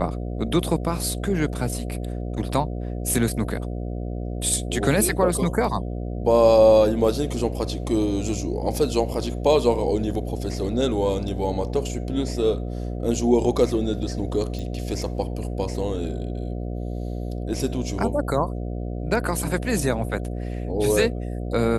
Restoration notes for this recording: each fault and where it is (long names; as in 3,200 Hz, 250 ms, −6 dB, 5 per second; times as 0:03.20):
mains buzz 60 Hz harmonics 12 −29 dBFS
0:14.59: click −22 dBFS